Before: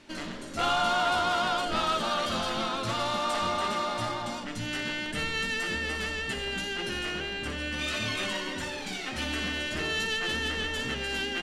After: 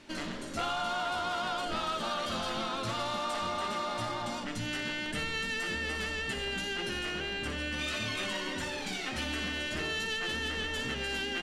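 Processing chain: compression 4:1, threshold -31 dBFS, peak gain reduction 7.5 dB

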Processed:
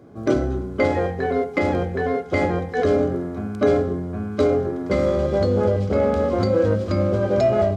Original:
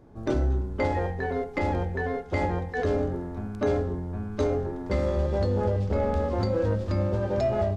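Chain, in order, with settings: high-pass 90 Hz; comb of notches 900 Hz; trim +8 dB

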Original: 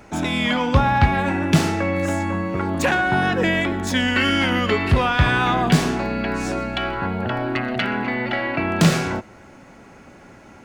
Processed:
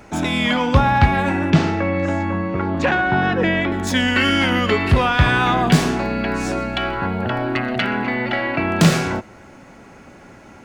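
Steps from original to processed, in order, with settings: 1.50–3.72 s: distance through air 150 m; trim +2 dB

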